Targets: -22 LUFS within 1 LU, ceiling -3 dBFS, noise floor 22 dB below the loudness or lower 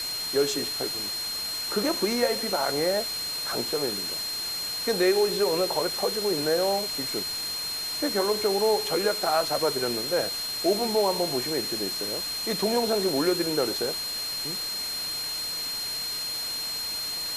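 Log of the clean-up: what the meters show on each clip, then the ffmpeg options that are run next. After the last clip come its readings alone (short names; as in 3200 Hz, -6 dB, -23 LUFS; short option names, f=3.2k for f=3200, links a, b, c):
steady tone 4200 Hz; tone level -30 dBFS; noise floor -32 dBFS; noise floor target -48 dBFS; loudness -26.0 LUFS; peak -11.5 dBFS; loudness target -22.0 LUFS
-> -af "bandreject=f=4.2k:w=30"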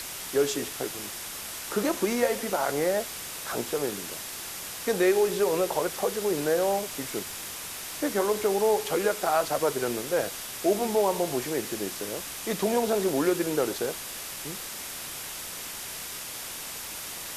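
steady tone none; noise floor -38 dBFS; noise floor target -51 dBFS
-> -af "afftdn=nr=13:nf=-38"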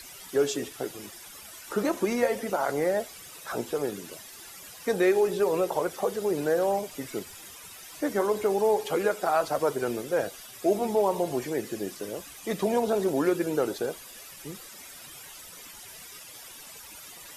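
noise floor -46 dBFS; noise floor target -50 dBFS
-> -af "afftdn=nr=6:nf=-46"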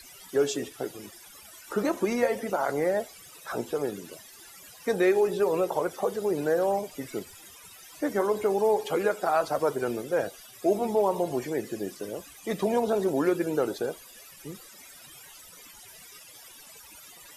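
noise floor -50 dBFS; loudness -28.0 LUFS; peak -13.0 dBFS; loudness target -22.0 LUFS
-> -af "volume=6dB"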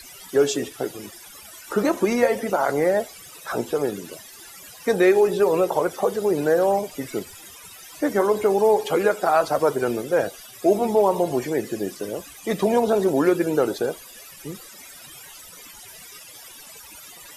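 loudness -22.0 LUFS; peak -7.0 dBFS; noise floor -44 dBFS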